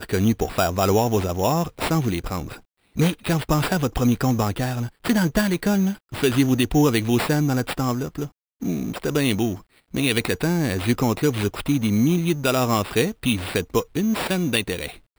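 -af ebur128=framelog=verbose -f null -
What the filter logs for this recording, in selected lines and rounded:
Integrated loudness:
  I:         -22.2 LUFS
  Threshold: -32.4 LUFS
Loudness range:
  LRA:         2.9 LU
  Threshold: -42.4 LUFS
  LRA low:   -24.0 LUFS
  LRA high:  -21.1 LUFS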